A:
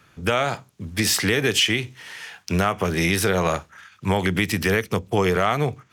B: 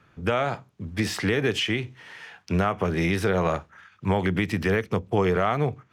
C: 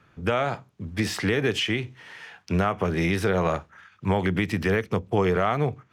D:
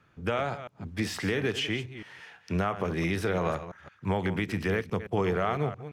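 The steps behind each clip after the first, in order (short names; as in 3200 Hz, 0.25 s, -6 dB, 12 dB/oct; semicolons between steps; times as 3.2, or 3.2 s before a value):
LPF 1700 Hz 6 dB/oct; gain -1.5 dB
nothing audible
reverse delay 0.169 s, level -12 dB; gain -5 dB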